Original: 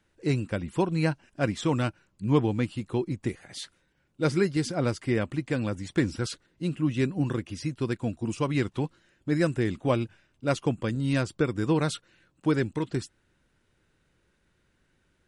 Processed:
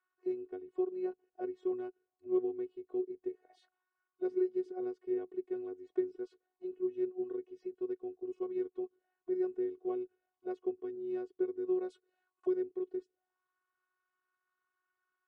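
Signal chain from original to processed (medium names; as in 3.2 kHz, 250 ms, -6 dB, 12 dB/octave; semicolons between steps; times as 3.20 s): robot voice 367 Hz; auto-wah 430–1200 Hz, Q 4.9, down, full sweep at -32.5 dBFS; 11.90–12.54 s: tone controls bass -1 dB, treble +10 dB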